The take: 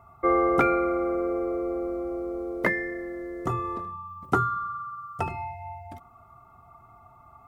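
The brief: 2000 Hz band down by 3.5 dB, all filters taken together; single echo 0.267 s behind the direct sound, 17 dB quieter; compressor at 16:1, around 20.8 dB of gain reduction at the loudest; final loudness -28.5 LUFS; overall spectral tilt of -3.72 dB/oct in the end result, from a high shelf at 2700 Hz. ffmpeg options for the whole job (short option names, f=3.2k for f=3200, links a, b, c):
-af "equalizer=f=2k:t=o:g=-3,highshelf=f=2.7k:g=-3.5,acompressor=threshold=-39dB:ratio=16,aecho=1:1:267:0.141,volume=15dB"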